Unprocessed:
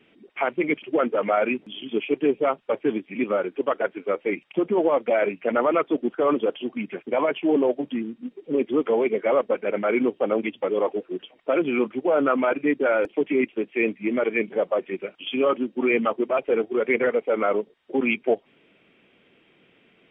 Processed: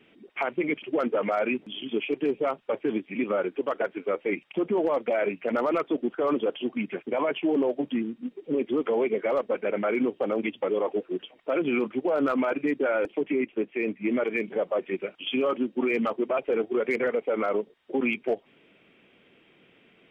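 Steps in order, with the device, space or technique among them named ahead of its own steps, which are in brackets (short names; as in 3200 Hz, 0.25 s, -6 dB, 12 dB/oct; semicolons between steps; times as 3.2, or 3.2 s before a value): clipper into limiter (hard clip -12 dBFS, distortion -33 dB; limiter -17.5 dBFS, peak gain reduction 5.5 dB); 13.2–14.05 air absorption 210 m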